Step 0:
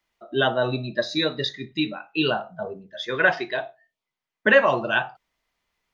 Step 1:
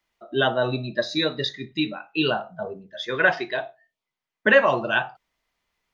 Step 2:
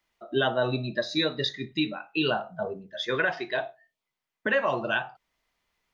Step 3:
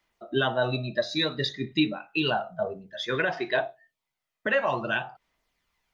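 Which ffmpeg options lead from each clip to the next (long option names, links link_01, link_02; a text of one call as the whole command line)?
ffmpeg -i in.wav -af anull out.wav
ffmpeg -i in.wav -af "alimiter=limit=-14.5dB:level=0:latency=1:release=377" out.wav
ffmpeg -i in.wav -af "aphaser=in_gain=1:out_gain=1:delay=1.6:decay=0.35:speed=0.57:type=sinusoidal" out.wav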